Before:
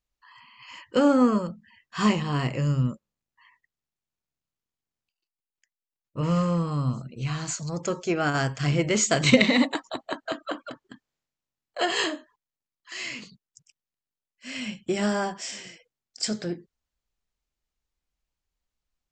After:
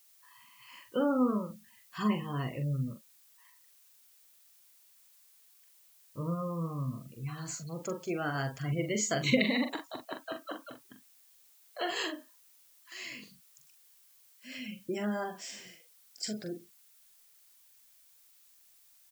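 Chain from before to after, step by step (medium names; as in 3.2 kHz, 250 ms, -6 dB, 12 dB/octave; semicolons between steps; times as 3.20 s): spectral gate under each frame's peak -25 dB strong; added noise blue -54 dBFS; doubling 43 ms -7 dB; trim -9 dB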